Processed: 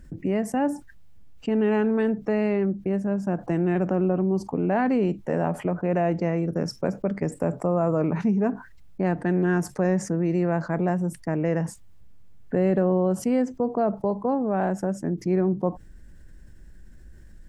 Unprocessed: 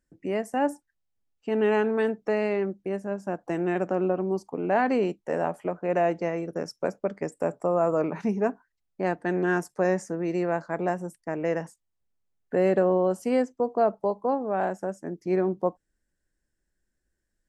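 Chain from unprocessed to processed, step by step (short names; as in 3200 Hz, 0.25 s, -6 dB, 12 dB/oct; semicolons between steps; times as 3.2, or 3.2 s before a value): tone controls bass +13 dB, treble -5 dB; fast leveller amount 50%; gain -4 dB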